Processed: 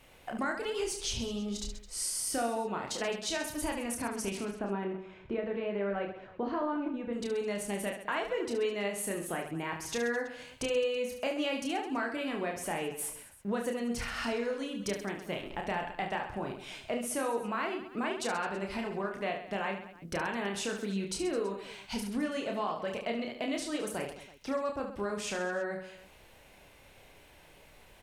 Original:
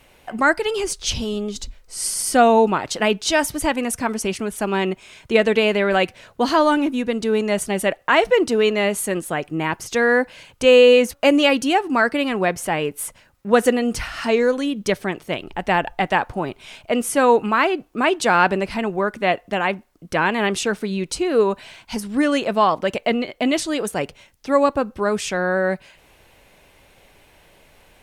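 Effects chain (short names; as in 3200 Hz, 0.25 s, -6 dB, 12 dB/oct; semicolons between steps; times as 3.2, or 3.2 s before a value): 4.51–7.13 Bessel low-pass 1300 Hz, order 2; compressor 4:1, threshold -27 dBFS, peak gain reduction 15.5 dB; reverse bouncing-ball echo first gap 30 ms, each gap 1.4×, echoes 5; gain -7 dB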